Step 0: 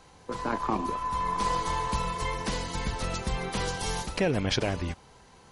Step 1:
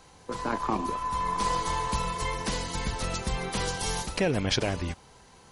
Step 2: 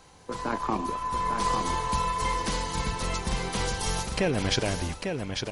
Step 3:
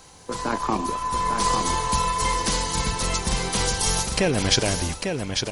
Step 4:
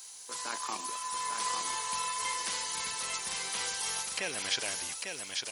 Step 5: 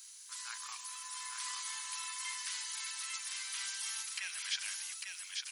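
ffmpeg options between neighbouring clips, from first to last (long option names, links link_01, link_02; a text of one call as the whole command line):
ffmpeg -i in.wav -af "highshelf=frequency=5400:gain=5" out.wav
ffmpeg -i in.wav -af "aecho=1:1:848:0.531" out.wav
ffmpeg -i in.wav -af "bass=frequency=250:gain=0,treble=frequency=4000:gain=7,volume=4dB" out.wav
ffmpeg -i in.wav -filter_complex "[0:a]aderivative,acrossover=split=2800[link_01][link_02];[link_02]acompressor=threshold=-41dB:ratio=4:attack=1:release=60[link_03];[link_01][link_03]amix=inputs=2:normalize=0,volume=5dB" out.wav
ffmpeg -i in.wav -af "highpass=frequency=1300:width=0.5412,highpass=frequency=1300:width=1.3066,volume=-5dB" out.wav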